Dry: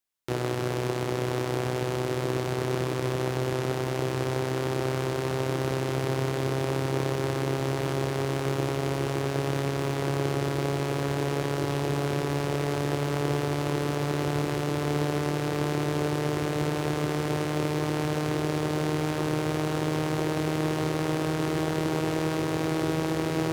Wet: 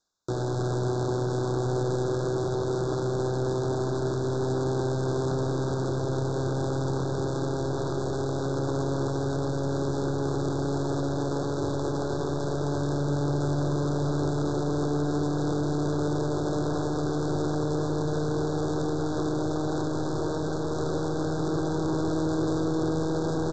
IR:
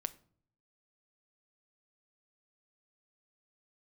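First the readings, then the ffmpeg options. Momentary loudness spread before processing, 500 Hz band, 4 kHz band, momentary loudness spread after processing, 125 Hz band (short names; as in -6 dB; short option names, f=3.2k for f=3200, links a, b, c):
1 LU, +0.5 dB, -5.5 dB, 2 LU, +0.5 dB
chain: -filter_complex "[0:a]areverse,acompressor=mode=upward:threshold=-34dB:ratio=2.5,areverse,alimiter=limit=-18.5dB:level=0:latency=1:release=206,aresample=16000,asoftclip=type=tanh:threshold=-31dB,aresample=44100,asuperstop=centerf=2400:order=20:qfactor=1.3[a];[1:a]atrim=start_sample=2205,asetrate=26901,aresample=44100[b];[a][b]afir=irnorm=-1:irlink=0,volume=7dB"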